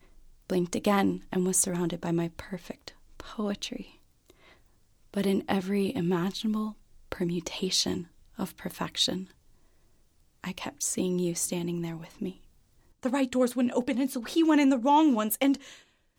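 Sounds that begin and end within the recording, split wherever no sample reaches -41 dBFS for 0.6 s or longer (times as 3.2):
5.14–9.3
10.44–12.32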